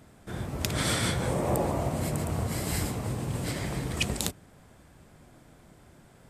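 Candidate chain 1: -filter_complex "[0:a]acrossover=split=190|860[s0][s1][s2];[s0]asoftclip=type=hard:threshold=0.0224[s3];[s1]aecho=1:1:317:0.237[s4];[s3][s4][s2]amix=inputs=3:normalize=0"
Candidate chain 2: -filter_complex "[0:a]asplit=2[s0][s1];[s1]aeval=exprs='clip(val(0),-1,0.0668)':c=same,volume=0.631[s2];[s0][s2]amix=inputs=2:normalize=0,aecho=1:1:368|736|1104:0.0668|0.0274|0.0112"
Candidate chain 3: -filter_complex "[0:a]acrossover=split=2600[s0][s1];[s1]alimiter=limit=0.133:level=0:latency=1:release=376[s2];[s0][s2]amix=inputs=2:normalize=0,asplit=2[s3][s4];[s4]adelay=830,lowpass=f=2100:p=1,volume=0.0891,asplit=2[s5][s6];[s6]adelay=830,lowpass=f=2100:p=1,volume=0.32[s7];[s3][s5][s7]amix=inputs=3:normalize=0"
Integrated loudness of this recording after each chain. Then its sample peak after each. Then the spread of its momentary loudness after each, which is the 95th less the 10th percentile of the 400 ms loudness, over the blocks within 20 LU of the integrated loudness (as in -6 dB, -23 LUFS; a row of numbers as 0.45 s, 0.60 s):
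-31.0 LUFS, -26.0 LUFS, -30.5 LUFS; -6.0 dBFS, -2.5 dBFS, -12.5 dBFS; 6 LU, 6 LU, 8 LU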